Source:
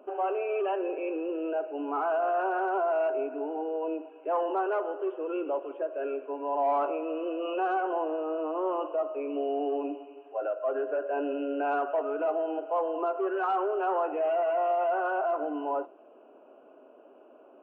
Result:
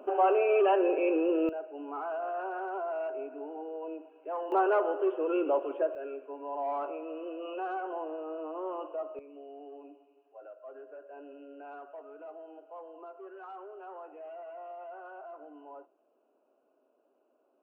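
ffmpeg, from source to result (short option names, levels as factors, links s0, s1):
-af "asetnsamples=n=441:p=0,asendcmd='1.49 volume volume -7.5dB;4.52 volume volume 3dB;5.95 volume volume -7dB;9.19 volume volume -17.5dB',volume=1.78"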